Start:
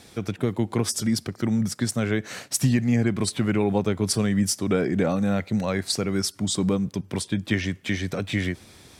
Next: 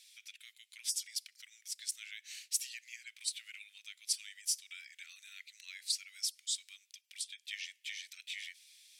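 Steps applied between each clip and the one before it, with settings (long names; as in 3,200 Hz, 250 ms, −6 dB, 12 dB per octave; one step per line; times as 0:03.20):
Butterworth high-pass 2,300 Hz 36 dB per octave
level −7.5 dB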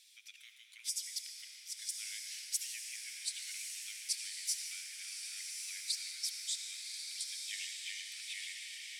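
feedback delay with all-pass diffusion 1,145 ms, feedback 53%, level −4 dB
convolution reverb RT60 5.1 s, pre-delay 63 ms, DRR 2.5 dB
level −2.5 dB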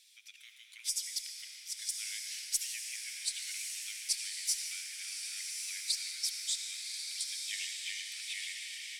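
harmonic generator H 2 −24 dB, 4 −29 dB, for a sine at −20 dBFS
automatic gain control gain up to 3.5 dB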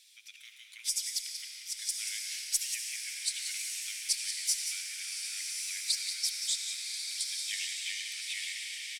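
single-tap delay 183 ms −9 dB
level +2.5 dB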